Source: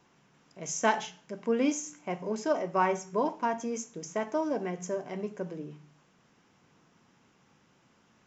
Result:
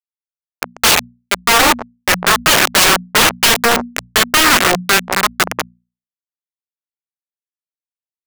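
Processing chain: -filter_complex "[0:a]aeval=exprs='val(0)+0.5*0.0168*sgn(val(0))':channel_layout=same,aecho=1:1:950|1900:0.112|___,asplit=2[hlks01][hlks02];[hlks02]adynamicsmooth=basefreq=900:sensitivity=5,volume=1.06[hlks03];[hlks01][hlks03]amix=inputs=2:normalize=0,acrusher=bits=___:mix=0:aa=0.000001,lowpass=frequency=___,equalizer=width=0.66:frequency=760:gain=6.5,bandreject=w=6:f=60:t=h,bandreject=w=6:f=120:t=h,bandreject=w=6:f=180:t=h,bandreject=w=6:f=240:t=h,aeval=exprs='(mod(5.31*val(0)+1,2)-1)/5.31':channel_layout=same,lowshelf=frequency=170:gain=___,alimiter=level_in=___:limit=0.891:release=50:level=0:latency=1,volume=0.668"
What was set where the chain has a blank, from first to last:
0.0202, 3, 1300, -3, 7.94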